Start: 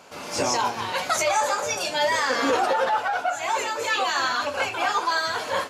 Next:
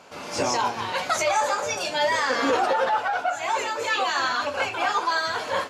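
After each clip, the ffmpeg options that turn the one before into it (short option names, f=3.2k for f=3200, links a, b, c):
-af "highshelf=f=9.4k:g=-9.5"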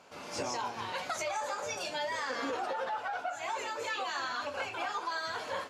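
-af "acompressor=threshold=-23dB:ratio=6,volume=-8.5dB"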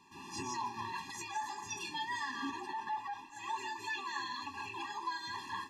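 -af "afftfilt=real='re*eq(mod(floor(b*sr/1024/400),2),0)':imag='im*eq(mod(floor(b*sr/1024/400),2),0)':win_size=1024:overlap=0.75,volume=-1dB"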